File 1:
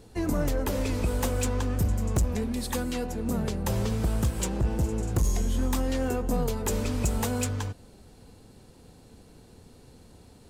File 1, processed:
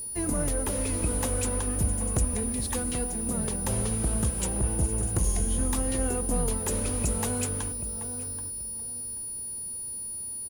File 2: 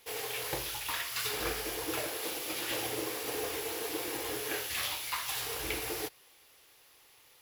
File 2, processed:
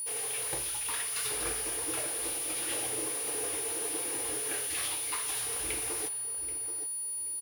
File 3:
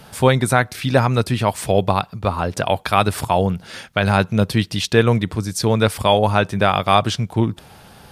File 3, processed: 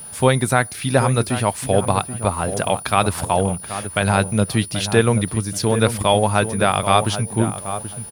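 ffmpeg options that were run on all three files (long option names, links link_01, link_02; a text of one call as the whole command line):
ffmpeg -i in.wav -filter_complex "[0:a]aeval=exprs='val(0)+0.0355*sin(2*PI*9700*n/s)':channel_layout=same,asplit=2[link_01][link_02];[link_02]adelay=781,lowpass=frequency=1300:poles=1,volume=-9dB,asplit=2[link_03][link_04];[link_04]adelay=781,lowpass=frequency=1300:poles=1,volume=0.27,asplit=2[link_05][link_06];[link_06]adelay=781,lowpass=frequency=1300:poles=1,volume=0.27[link_07];[link_01][link_03][link_05][link_07]amix=inputs=4:normalize=0,aeval=exprs='sgn(val(0))*max(abs(val(0))-0.00944,0)':channel_layout=same,volume=-1dB" out.wav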